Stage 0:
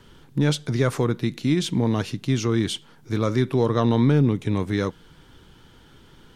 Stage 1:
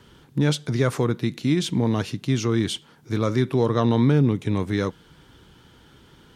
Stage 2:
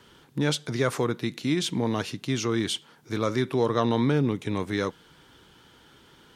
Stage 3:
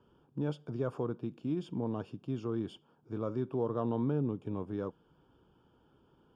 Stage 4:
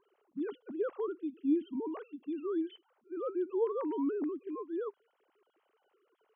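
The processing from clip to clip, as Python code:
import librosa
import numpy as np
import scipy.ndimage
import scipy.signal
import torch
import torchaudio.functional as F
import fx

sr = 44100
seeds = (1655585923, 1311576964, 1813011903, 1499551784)

y1 = scipy.signal.sosfilt(scipy.signal.butter(2, 42.0, 'highpass', fs=sr, output='sos'), x)
y2 = fx.low_shelf(y1, sr, hz=230.0, db=-10.0)
y3 = scipy.signal.lfilter(np.full(22, 1.0 / 22), 1.0, y2)
y3 = y3 * 10.0 ** (-8.0 / 20.0)
y4 = fx.sine_speech(y3, sr)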